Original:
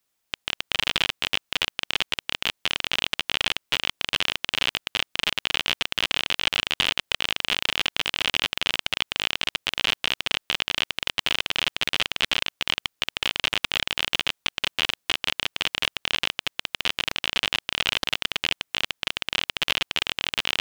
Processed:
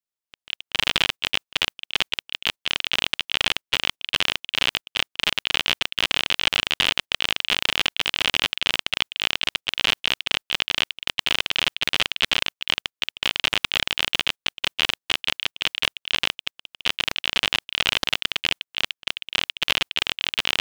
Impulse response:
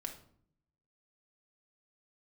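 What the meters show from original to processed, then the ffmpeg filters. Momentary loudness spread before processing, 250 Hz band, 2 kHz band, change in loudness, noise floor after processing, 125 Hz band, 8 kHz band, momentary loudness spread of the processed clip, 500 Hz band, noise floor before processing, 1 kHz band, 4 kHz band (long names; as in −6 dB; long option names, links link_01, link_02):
3 LU, +1.0 dB, +2.0 dB, +2.0 dB, below −85 dBFS, +1.0 dB, +1.5 dB, 5 LU, +1.0 dB, −77 dBFS, +1.5 dB, +2.0 dB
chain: -filter_complex "[0:a]agate=range=-23dB:threshold=-30dB:ratio=16:detection=peak,asplit=2[link_01][link_02];[link_02]alimiter=limit=-9.5dB:level=0:latency=1,volume=2dB[link_03];[link_01][link_03]amix=inputs=2:normalize=0,volume=-2.5dB"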